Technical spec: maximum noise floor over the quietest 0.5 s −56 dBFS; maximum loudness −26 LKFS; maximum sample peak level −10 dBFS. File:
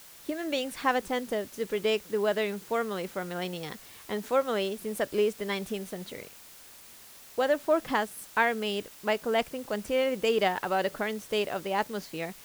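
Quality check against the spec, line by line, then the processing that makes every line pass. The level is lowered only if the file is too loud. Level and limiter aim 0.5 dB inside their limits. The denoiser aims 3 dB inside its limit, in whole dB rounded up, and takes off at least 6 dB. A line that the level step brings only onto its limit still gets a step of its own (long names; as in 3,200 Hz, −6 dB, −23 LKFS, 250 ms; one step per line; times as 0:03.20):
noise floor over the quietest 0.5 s −51 dBFS: out of spec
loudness −30.0 LKFS: in spec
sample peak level −11.0 dBFS: in spec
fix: broadband denoise 8 dB, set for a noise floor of −51 dBFS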